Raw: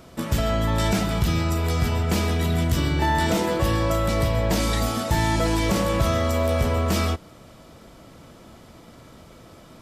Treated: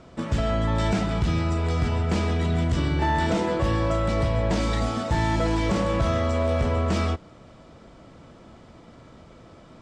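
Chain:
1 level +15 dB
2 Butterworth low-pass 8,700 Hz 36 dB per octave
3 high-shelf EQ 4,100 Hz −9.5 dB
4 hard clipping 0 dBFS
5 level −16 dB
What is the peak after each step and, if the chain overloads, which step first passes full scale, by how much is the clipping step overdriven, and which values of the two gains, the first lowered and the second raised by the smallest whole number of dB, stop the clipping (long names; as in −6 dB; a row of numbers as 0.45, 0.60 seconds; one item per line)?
+4.0, +4.0, +4.0, 0.0, −16.0 dBFS
step 1, 4.0 dB
step 1 +11 dB, step 5 −12 dB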